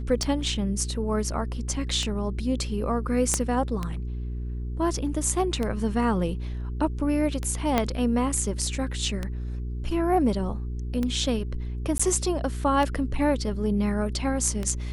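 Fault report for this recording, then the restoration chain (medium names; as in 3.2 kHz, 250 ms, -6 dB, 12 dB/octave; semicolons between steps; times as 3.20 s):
hum 60 Hz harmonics 7 -31 dBFS
tick 33 1/3 rpm -15 dBFS
3.34 s: pop -9 dBFS
7.78 s: pop -8 dBFS
11.98–11.99 s: dropout 15 ms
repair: de-click; de-hum 60 Hz, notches 7; interpolate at 11.98 s, 15 ms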